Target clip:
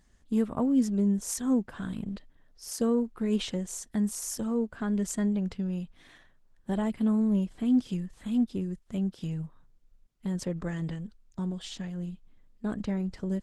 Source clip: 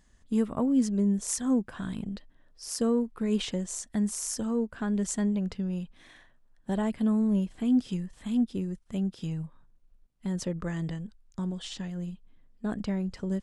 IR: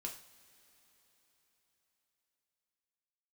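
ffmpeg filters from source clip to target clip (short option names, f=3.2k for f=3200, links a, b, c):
-ar 48000 -c:a libopus -b:a 16k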